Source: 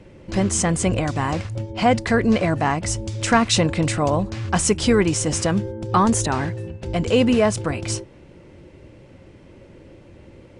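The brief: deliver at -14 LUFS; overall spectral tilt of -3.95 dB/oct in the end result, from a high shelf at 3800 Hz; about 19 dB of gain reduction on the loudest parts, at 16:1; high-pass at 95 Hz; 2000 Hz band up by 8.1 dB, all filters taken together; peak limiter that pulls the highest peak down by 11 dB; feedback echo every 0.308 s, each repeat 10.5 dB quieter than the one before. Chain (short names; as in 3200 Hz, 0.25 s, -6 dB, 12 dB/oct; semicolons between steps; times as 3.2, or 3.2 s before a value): HPF 95 Hz; bell 2000 Hz +8.5 dB; high shelf 3800 Hz +6 dB; compressor 16:1, threshold -27 dBFS; limiter -23.5 dBFS; feedback echo 0.308 s, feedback 30%, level -10.5 dB; gain +19 dB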